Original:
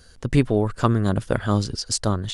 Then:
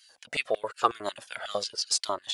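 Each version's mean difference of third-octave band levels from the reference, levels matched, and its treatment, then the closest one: 10.5 dB: dynamic EQ 4100 Hz, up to +4 dB, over -38 dBFS, Q 0.85; LFO high-pass square 5.5 Hz 600–2600 Hz; cascading flanger falling 0.94 Hz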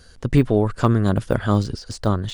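1.5 dB: high shelf 8400 Hz -5 dB; de-esser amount 85%; gain +2.5 dB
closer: second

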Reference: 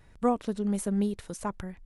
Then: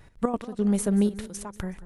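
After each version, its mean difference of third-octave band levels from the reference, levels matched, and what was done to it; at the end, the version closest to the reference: 4.0 dB: step gate "x.x.x..xxxxx" 179 bpm -12 dB; warbling echo 0.186 s, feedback 42%, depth 109 cents, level -16.5 dB; gain +5.5 dB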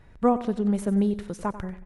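2.5 dB: high shelf 4500 Hz -12 dB; on a send: feedback echo 92 ms, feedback 41%, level -14 dB; on the sum: gain +4.5 dB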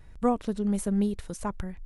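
1.0 dB: low shelf 90 Hz +10.5 dB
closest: third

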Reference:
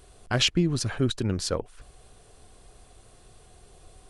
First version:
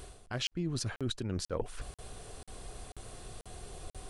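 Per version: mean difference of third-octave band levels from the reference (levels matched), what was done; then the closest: 10.5 dB: reverse; compressor 12:1, threshold -38 dBFS, peak gain reduction 20 dB; reverse; crackling interface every 0.49 s, samples 2048, zero, from 0.47; gain +6.5 dB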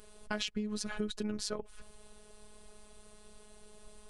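7.0 dB: robotiser 211 Hz; compressor 12:1, threshold -31 dBFS, peak gain reduction 13.5 dB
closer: second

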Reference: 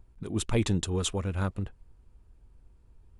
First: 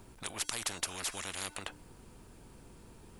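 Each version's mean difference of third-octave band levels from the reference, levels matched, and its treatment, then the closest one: 14.5 dB: high shelf 4300 Hz +7.5 dB; resonator 300 Hz, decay 0.41 s, harmonics odd, mix 30%; spectral compressor 10:1; gain +7 dB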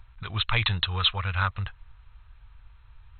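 10.0 dB: EQ curve 110 Hz 0 dB, 290 Hz -22 dB, 1200 Hz +11 dB; in parallel at -1 dB: compressor, threshold -35 dBFS, peak gain reduction 17.5 dB; on the sum: brick-wall FIR low-pass 4200 Hz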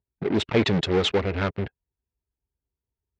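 6.0 dB: per-bin expansion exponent 1.5; in parallel at -8 dB: fuzz box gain 42 dB, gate -49 dBFS; on the sum: speaker cabinet 150–4500 Hz, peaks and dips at 420 Hz +5 dB, 1100 Hz -4 dB, 2100 Hz +5 dB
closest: third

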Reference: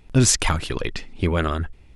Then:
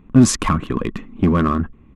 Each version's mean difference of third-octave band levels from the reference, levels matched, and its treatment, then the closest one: 6.0 dB: Wiener smoothing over 9 samples; small resonant body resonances 220/1100 Hz, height 17 dB, ringing for 25 ms; in parallel at -4 dB: overloaded stage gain 10.5 dB; on the sum: downsampling 32000 Hz; gain -7 dB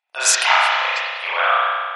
16.0 dB: elliptic high-pass 690 Hz, stop band 70 dB; gate -59 dBFS, range -23 dB; spectral gate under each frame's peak -25 dB strong; spring tank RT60 1.8 s, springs 31 ms, chirp 70 ms, DRR -9.5 dB; gain +3.5 dB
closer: first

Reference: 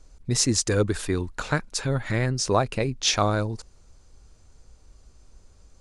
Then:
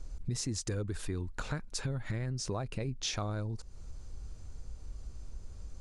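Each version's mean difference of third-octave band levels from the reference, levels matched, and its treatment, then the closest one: 3.0 dB: low shelf 220 Hz +9.5 dB; in parallel at +2 dB: limiter -14 dBFS, peak gain reduction 8 dB; on the sum: compressor 4:1, threshold -28 dBFS, peak gain reduction 16.5 dB; gain -7 dB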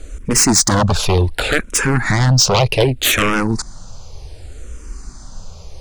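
7.0 dB: in parallel at +0.5 dB: compressor, threshold -34 dBFS, peak gain reduction 17 dB; on the sum: sine folder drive 14 dB, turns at -5 dBFS; endless phaser -0.66 Hz; gain -1.5 dB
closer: first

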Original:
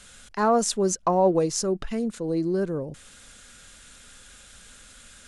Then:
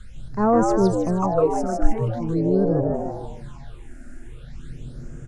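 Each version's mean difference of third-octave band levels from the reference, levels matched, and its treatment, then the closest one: 11.0 dB: RIAA curve playback; on a send: frequency-shifting echo 0.155 s, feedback 50%, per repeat +110 Hz, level -4 dB; on the sum: phaser stages 8, 0.43 Hz, lowest notch 130–4000 Hz; bell 250 Hz -2.5 dB 1.7 oct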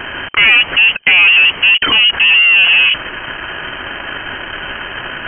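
16.0 dB: sample leveller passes 3; in parallel at -5 dB: hard clip -20 dBFS, distortion -10 dB; on the sum: overdrive pedal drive 31 dB, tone 1700 Hz, clips at -6.5 dBFS; inverted band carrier 3100 Hz; gain +3 dB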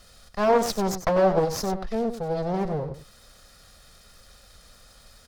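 6.5 dB: minimum comb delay 1.6 ms; EQ curve 790 Hz 0 dB, 3000 Hz -8 dB, 4700 Hz +2 dB, 7500 Hz -10 dB, 11000 Hz -4 dB; echo 95 ms -10 dB; Doppler distortion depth 0.34 ms; gain +1.5 dB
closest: third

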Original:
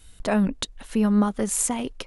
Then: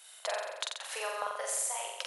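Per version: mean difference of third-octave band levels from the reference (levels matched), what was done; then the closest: 14.5 dB: steep high-pass 550 Hz 48 dB/oct; compressor, threshold -36 dBFS, peak gain reduction 14.5 dB; flutter echo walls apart 7.6 m, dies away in 1 s; gain +1.5 dB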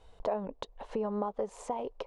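6.5 dB: band shelf 660 Hz +16 dB; compressor 2.5:1, threshold -27 dBFS, peak gain reduction 14.5 dB; air absorption 130 m; gain -8 dB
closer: second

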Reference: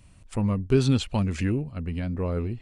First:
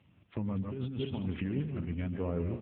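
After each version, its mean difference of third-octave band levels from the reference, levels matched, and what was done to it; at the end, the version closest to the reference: 7.0 dB: regenerating reverse delay 0.15 s, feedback 42%, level -8 dB; negative-ratio compressor -26 dBFS, ratio -1; on a send: echo 0.141 s -12 dB; on the sum: gain -6 dB; AMR-NB 6.7 kbps 8000 Hz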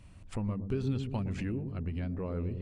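4.0 dB: de-esser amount 85%; high shelf 5600 Hz -9.5 dB; compressor 2.5:1, threshold -36 dBFS, peak gain reduction 14 dB; dark delay 0.115 s, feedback 59%, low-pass 440 Hz, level -6.5 dB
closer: second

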